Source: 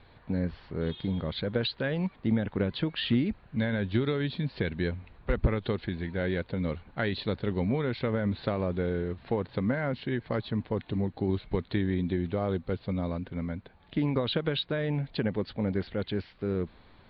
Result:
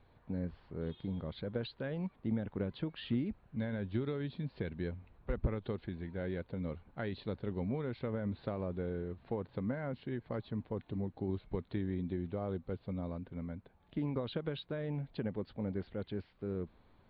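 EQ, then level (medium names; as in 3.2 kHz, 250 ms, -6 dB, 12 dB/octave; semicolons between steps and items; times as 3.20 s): peaking EQ 1.8 kHz -2.5 dB 0.59 oct; treble shelf 2.7 kHz -10.5 dB; -8.0 dB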